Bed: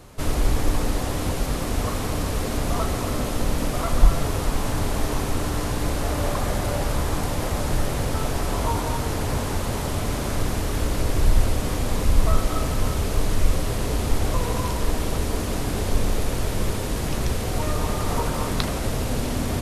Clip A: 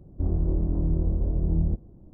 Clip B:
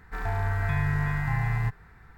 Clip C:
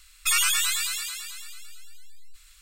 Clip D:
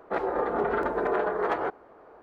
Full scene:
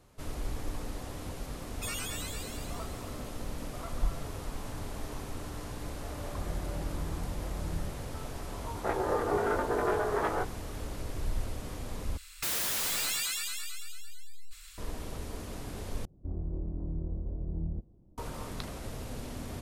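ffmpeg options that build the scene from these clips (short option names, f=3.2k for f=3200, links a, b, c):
-filter_complex "[3:a]asplit=2[a][b];[1:a]asplit=2[c][d];[0:a]volume=-15dB[e];[4:a]asplit=2[f][g];[g]adelay=19,volume=-3.5dB[h];[f][h]amix=inputs=2:normalize=0[i];[b]aeval=exprs='0.282*sin(PI/2*7.08*val(0)/0.282)':c=same[j];[e]asplit=3[k][l][m];[k]atrim=end=12.174[n];[j]atrim=end=2.61,asetpts=PTS-STARTPTS,volume=-17.5dB[o];[l]atrim=start=14.776:end=16.054[p];[d]atrim=end=2.13,asetpts=PTS-STARTPTS,volume=-11dB[q];[m]atrim=start=18.176[r];[a]atrim=end=2.61,asetpts=PTS-STARTPTS,volume=-16dB,afade=t=in:d=0.004:c=hsin,afade=t=out:st=2.606:d=0.004:c=hsin,adelay=1560[s];[c]atrim=end=2.13,asetpts=PTS-STARTPTS,volume=-13dB,afade=t=in:d=0.004:c=hsin,afade=t=out:st=2.126:d=0.004:c=hsin,adelay=6150[t];[i]atrim=end=2.22,asetpts=PTS-STARTPTS,volume=-4.5dB,afade=t=in:d=0.004:c=hsin,afade=t=out:st=2.216:d=0.004:c=hsin,adelay=8730[u];[n][o]acrossfade=d=0.004:c1=hsin:c2=hsin[v];[v][p]acrossfade=d=0.004:c1=hsin:c2=hsin[w];[w][q]acrossfade=d=0.004:c1=hsin:c2=hsin[x];[x][r]acrossfade=d=0.004:c1=hsin:c2=hsin[y];[y][s][t][u]amix=inputs=4:normalize=0"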